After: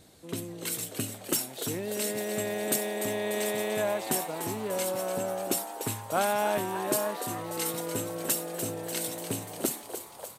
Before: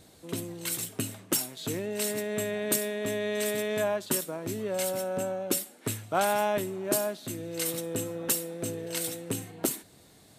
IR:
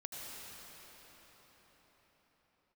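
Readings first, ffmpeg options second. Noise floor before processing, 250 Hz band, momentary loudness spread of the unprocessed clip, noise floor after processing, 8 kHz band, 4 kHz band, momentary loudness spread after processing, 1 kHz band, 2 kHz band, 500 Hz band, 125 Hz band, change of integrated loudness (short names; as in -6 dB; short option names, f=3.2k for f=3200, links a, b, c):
-56 dBFS, -0.5 dB, 7 LU, -47 dBFS, 0.0 dB, 0.0 dB, 6 LU, +1.5 dB, 0.0 dB, -0.5 dB, -1.0 dB, 0.0 dB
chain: -filter_complex "[0:a]asplit=9[a][b][c][d][e][f][g][h][i];[b]adelay=294,afreqshift=120,volume=-9dB[j];[c]adelay=588,afreqshift=240,volume=-12.9dB[k];[d]adelay=882,afreqshift=360,volume=-16.8dB[l];[e]adelay=1176,afreqshift=480,volume=-20.6dB[m];[f]adelay=1470,afreqshift=600,volume=-24.5dB[n];[g]adelay=1764,afreqshift=720,volume=-28.4dB[o];[h]adelay=2058,afreqshift=840,volume=-32.3dB[p];[i]adelay=2352,afreqshift=960,volume=-36.1dB[q];[a][j][k][l][m][n][o][p][q]amix=inputs=9:normalize=0,volume=-1dB"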